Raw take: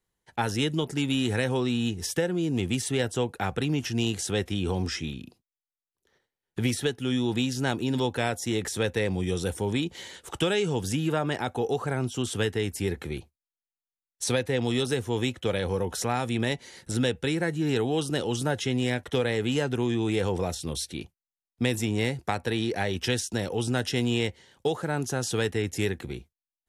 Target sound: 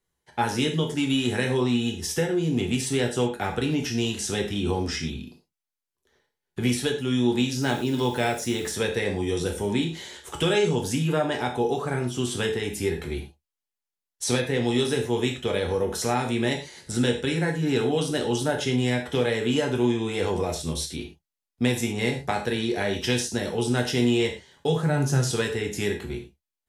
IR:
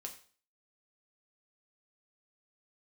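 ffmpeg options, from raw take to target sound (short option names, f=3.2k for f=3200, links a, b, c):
-filter_complex "[1:a]atrim=start_sample=2205,atrim=end_sample=4410,asetrate=35280,aresample=44100[a];[0:a][a]afir=irnorm=-1:irlink=0,asettb=1/sr,asplit=3[b][c][d];[b]atrim=end=7.624[e];[c]atrim=start=7.62:end=8.72,asetpts=PTS-STARTPTS,afade=t=in:d=0.004:c=qsin,afade=t=out:st=1.096:d=0.004:c=qsin,acrusher=bits=7:mix=0:aa=0.5[f];[d]atrim=start=8.716[g];[e][f]acrossfade=d=0.004:c1=hsin:c2=qsin[h];[h][g]acrossfade=d=0.004:c1=qsin:c2=hsin,asettb=1/sr,asplit=3[i][j][k];[i]atrim=end=24.684[l];[j]atrim=start=24.68:end=25.31,asetpts=PTS-STARTPTS,afade=t=in:d=0.004:c=qsin,afade=t=out:st=0.626:d=0.004:c=qsin,equalizer=f=140:w=3.1:g=13[m];[k]atrim=start=25.306[n];[l][m]acrossfade=d=0.004:c1=hsin:c2=qsin[o];[o][n]acrossfade=d=0.004:c1=qsin:c2=hsin,volume=4.5dB"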